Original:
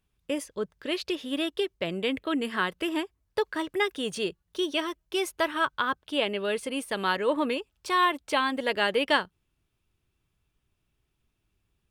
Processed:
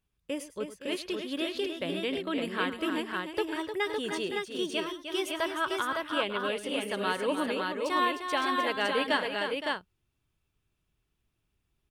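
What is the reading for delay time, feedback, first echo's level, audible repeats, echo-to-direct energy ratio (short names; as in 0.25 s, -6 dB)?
0.105 s, no steady repeat, -15.0 dB, 4, -1.5 dB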